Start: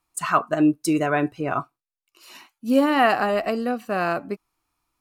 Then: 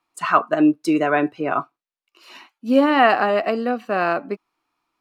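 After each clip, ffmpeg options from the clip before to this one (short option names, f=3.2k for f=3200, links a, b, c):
-filter_complex "[0:a]acrossover=split=180 4800:gain=0.126 1 0.2[a][b][c];[a][b][c]amix=inputs=3:normalize=0,volume=3.5dB"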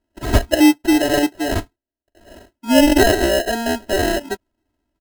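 -af "acrusher=samples=38:mix=1:aa=0.000001,aecho=1:1:3.1:1,volume=-1dB"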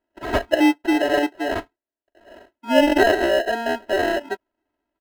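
-af "bass=f=250:g=-15,treble=f=4k:g=-15"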